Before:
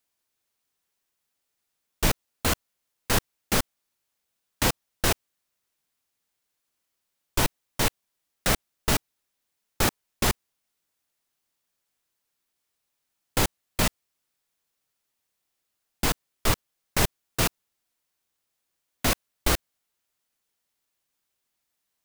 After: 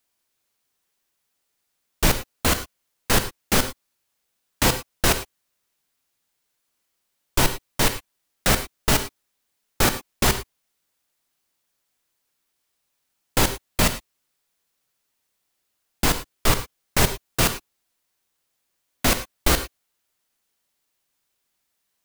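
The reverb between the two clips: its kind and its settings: non-linear reverb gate 0.13 s flat, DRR 9 dB; gain +4 dB

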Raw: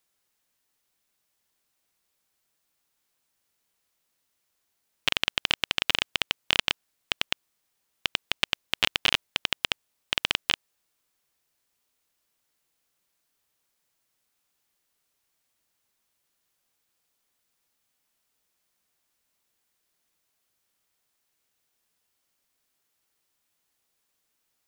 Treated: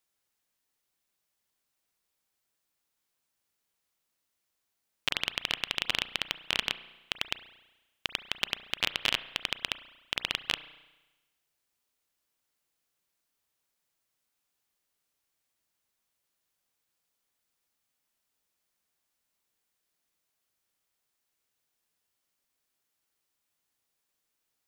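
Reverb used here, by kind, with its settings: spring tank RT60 1.1 s, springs 33 ms, chirp 40 ms, DRR 13 dB; gain -5 dB

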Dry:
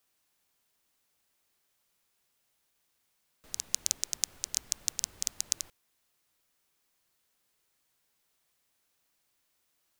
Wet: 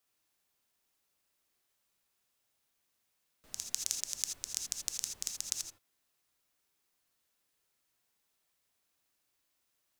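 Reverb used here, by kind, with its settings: non-linear reverb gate 0.1 s rising, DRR 4 dB; gain -5 dB

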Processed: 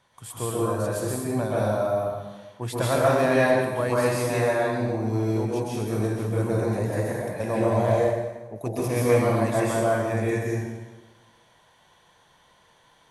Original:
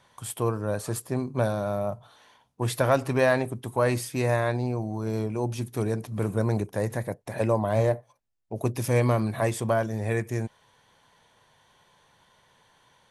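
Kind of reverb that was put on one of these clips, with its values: plate-style reverb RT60 1.2 s, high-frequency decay 0.85×, pre-delay 0.115 s, DRR -6.5 dB; gain -4.5 dB

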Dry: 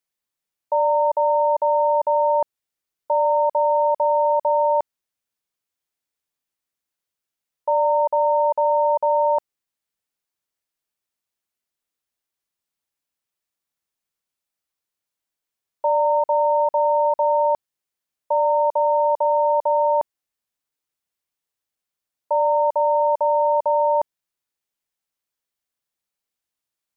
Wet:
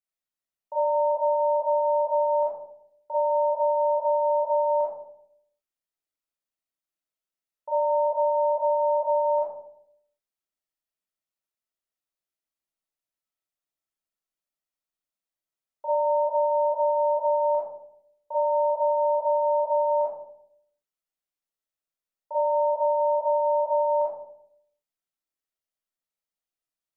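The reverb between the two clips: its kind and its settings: digital reverb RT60 0.71 s, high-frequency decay 0.3×, pre-delay 0 ms, DRR -6.5 dB; gain -14.5 dB

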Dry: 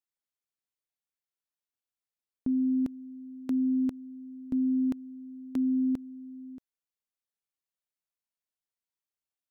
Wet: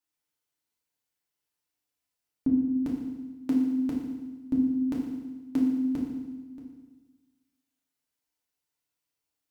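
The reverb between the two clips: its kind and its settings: FDN reverb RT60 1.2 s, low-frequency decay 1.2×, high-frequency decay 1×, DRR -4 dB; gain +2 dB

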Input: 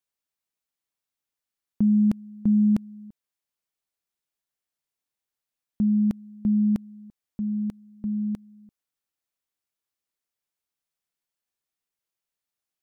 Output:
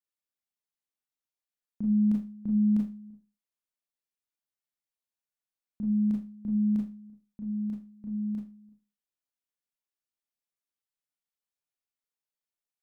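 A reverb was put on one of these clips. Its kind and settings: Schroeder reverb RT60 0.3 s, combs from 26 ms, DRR -2.5 dB; gain -12.5 dB

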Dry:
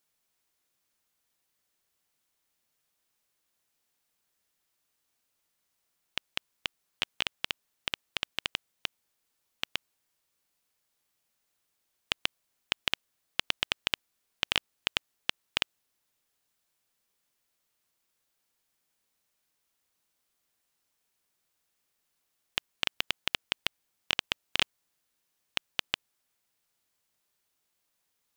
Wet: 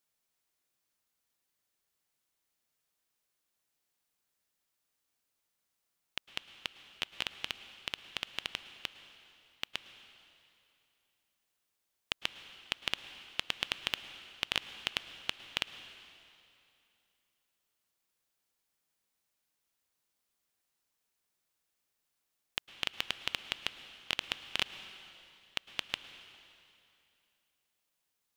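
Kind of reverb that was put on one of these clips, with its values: plate-style reverb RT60 2.7 s, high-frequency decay 0.95×, pre-delay 95 ms, DRR 11.5 dB; gain -4.5 dB

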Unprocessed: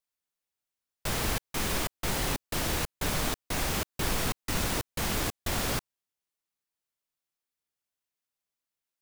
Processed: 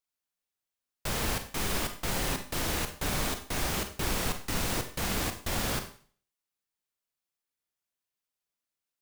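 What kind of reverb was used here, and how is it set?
Schroeder reverb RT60 0.46 s, combs from 31 ms, DRR 7 dB; gain -1.5 dB

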